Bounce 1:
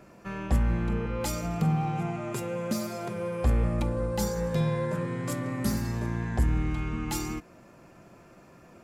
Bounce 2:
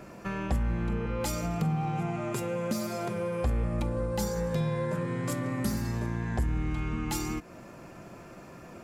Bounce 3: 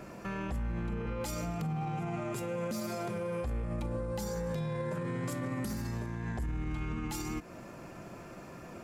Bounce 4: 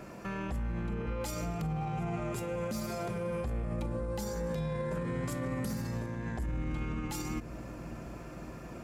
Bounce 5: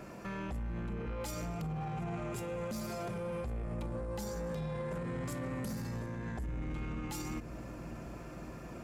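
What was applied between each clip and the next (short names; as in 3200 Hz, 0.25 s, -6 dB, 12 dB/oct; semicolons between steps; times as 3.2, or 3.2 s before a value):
compressor 2:1, threshold -39 dBFS, peak gain reduction 11 dB; gain +6 dB
limiter -28 dBFS, peak gain reduction 10.5 dB
analogue delay 0.556 s, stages 2048, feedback 75%, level -11 dB
soft clip -31.5 dBFS, distortion -16 dB; gain -1 dB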